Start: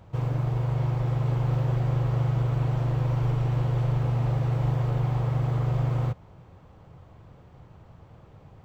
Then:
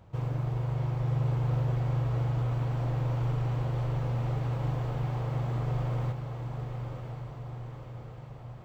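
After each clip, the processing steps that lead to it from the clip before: echo that smears into a reverb 1011 ms, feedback 59%, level -6 dB; trim -4.5 dB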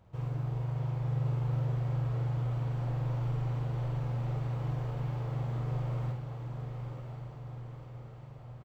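doubling 49 ms -4 dB; trim -6.5 dB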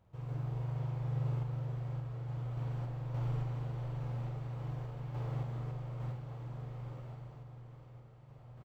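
random-step tremolo; trim -2.5 dB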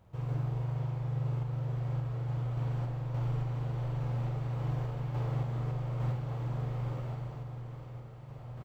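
gain riding within 4 dB 0.5 s; trim +5 dB

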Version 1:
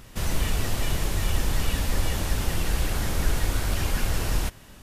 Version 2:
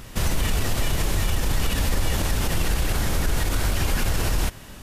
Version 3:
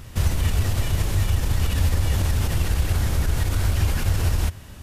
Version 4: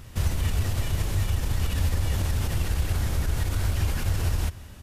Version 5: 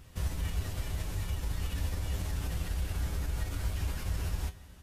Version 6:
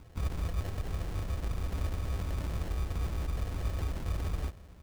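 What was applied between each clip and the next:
peak limiter -20 dBFS, peak gain reduction 9 dB; trim +6.5 dB
peaking EQ 85 Hz +12.5 dB 1 oct; trim -3.5 dB
delay 178 ms -21.5 dB; trim -4 dB
feedback comb 57 Hz, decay 0.18 s, harmonics odd, mix 80%; trim -2 dB
sample-and-hold 37×

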